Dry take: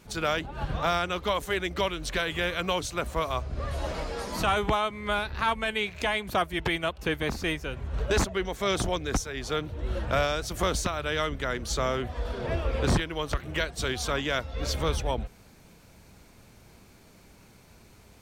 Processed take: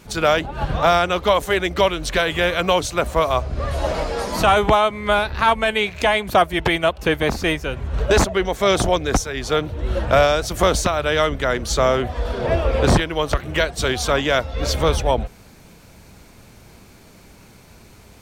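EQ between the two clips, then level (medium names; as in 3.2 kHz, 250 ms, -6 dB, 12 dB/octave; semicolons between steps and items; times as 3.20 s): dynamic bell 650 Hz, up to +5 dB, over -39 dBFS, Q 1.3; +8.0 dB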